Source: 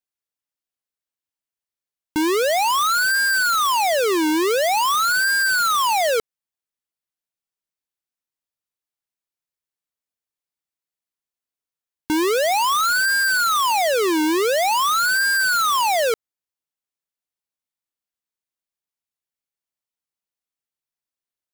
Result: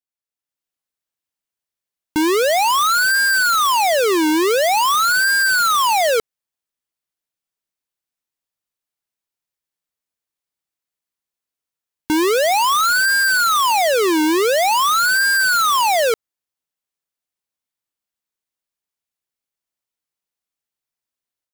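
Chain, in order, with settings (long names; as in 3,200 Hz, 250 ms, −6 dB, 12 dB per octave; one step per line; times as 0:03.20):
automatic gain control gain up to 8 dB
level −5 dB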